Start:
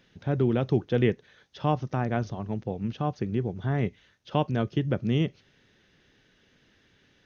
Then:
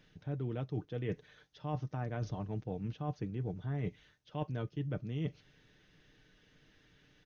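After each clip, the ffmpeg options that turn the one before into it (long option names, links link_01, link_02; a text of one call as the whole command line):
ffmpeg -i in.wav -af "lowshelf=frequency=73:gain=10.5,aecho=1:1:6.6:0.44,areverse,acompressor=threshold=-29dB:ratio=10,areverse,volume=-4.5dB" out.wav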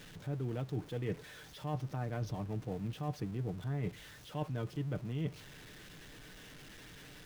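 ffmpeg -i in.wav -af "aeval=exprs='val(0)+0.5*0.00422*sgn(val(0))':channel_layout=same,volume=-1dB" out.wav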